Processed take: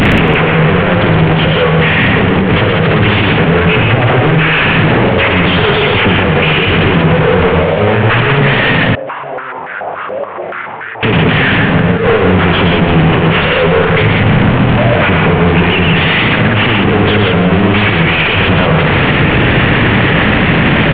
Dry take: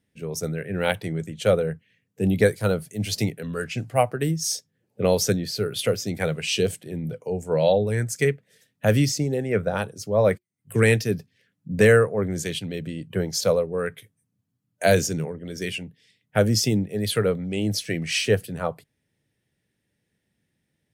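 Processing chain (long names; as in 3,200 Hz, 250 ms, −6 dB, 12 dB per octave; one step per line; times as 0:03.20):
linear delta modulator 16 kbit/s, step −16.5 dBFS
compressor whose output falls as the input rises −23 dBFS, ratio −1
multi-tap delay 55/119/177/280/337 ms −10/−3.5/−4/−17.5/−14.5 dB
boost into a limiter +15 dB
0:08.95–0:11.03: band-pass on a step sequencer 7 Hz 570–1,600 Hz
level −1 dB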